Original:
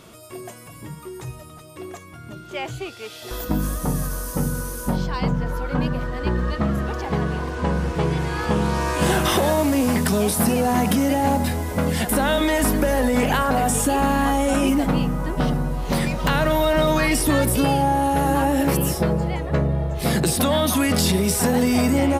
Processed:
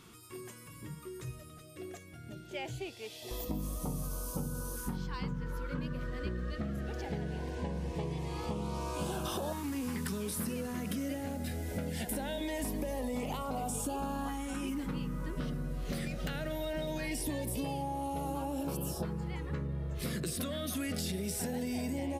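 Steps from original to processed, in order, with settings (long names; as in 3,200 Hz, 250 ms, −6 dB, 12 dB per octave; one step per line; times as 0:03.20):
downward compressor, threshold −24 dBFS, peak gain reduction 9.5 dB
auto-filter notch saw up 0.21 Hz 590–2,100 Hz
level −8.5 dB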